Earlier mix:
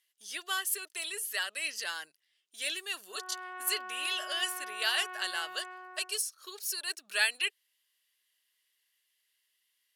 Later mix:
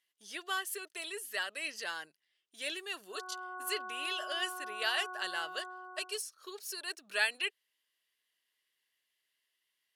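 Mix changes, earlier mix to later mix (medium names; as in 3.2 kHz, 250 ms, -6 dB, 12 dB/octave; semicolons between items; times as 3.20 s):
speech: add tilt EQ -2.5 dB/octave; background: add brick-wall FIR low-pass 1.7 kHz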